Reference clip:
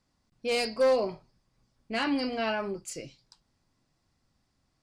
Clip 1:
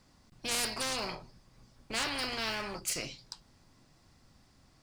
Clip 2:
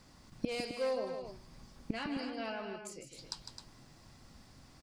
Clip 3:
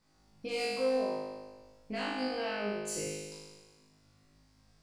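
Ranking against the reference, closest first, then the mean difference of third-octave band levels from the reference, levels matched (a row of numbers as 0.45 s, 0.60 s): 2, 3, 1; 6.0 dB, 8.5 dB, 12.0 dB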